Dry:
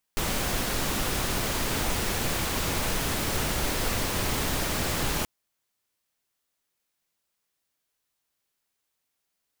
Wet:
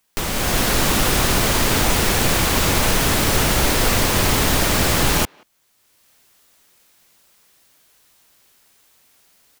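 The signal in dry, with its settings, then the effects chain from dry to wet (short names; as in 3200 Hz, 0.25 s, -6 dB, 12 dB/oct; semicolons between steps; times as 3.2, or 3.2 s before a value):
noise pink, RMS -27.5 dBFS 5.08 s
AGC gain up to 11 dB; speakerphone echo 0.18 s, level -30 dB; three-band squash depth 40%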